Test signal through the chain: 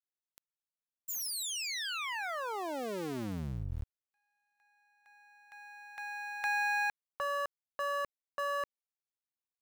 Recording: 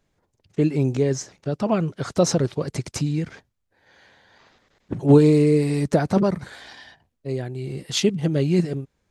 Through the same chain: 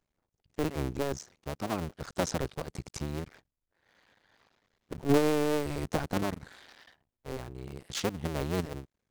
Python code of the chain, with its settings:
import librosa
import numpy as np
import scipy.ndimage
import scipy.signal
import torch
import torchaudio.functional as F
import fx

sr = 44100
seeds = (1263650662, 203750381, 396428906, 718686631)

y = fx.cycle_switch(x, sr, every=2, mode='muted')
y = F.gain(torch.from_numpy(y), -9.0).numpy()